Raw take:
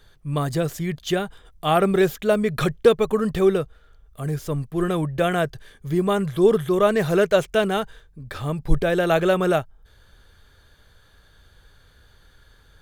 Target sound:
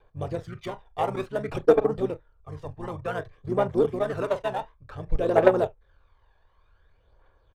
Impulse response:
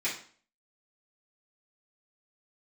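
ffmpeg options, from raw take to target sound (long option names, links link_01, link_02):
-filter_complex "[0:a]asplit=2[link_01][link_02];[link_02]asetrate=29433,aresample=44100,atempo=1.49831,volume=-3dB[link_03];[link_01][link_03]amix=inputs=2:normalize=0,asplit=2[link_04][link_05];[link_05]aecho=0:1:61|122:0.237|0.0427[link_06];[link_04][link_06]amix=inputs=2:normalize=0,apsyclip=6dB,bandreject=frequency=7100:width=14,atempo=1.7,tiltshelf=frequency=730:gain=6.5,adynamicsmooth=sensitivity=5:basefreq=3500,lowshelf=frequency=380:width_type=q:width=1.5:gain=-13,aphaser=in_gain=1:out_gain=1:delay=1.2:decay=0.52:speed=0.55:type=triangular,aeval=exprs='2.11*(cos(1*acos(clip(val(0)/2.11,-1,1)))-cos(1*PI/2))+0.335*(cos(3*acos(clip(val(0)/2.11,-1,1)))-cos(3*PI/2))':channel_layout=same,volume=-9dB"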